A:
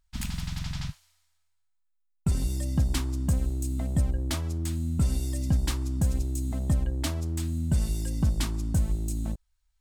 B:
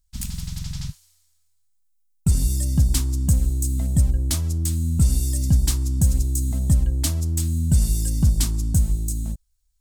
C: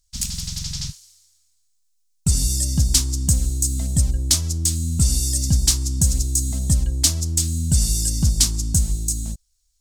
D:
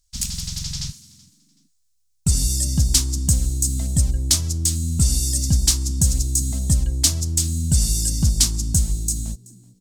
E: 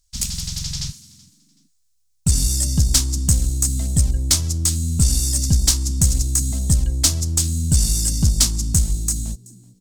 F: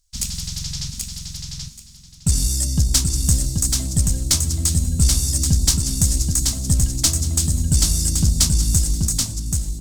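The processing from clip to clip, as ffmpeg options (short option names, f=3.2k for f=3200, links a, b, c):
-af "bass=f=250:g=10,treble=f=4k:g=15,dynaudnorm=f=240:g=9:m=11.5dB,volume=-7dB"
-af "equalizer=f=5.7k:t=o:w=1.8:g=13,volume=-1dB"
-filter_complex "[0:a]asplit=3[a][b][c];[b]adelay=378,afreqshift=66,volume=-23.5dB[d];[c]adelay=756,afreqshift=132,volume=-34dB[e];[a][d][e]amix=inputs=3:normalize=0"
-af "aeval=exprs='(tanh(2*val(0)+0.4)-tanh(0.4))/2':c=same,volume=3dB"
-af "aecho=1:1:781|1562|2343:0.631|0.133|0.0278,volume=-1dB"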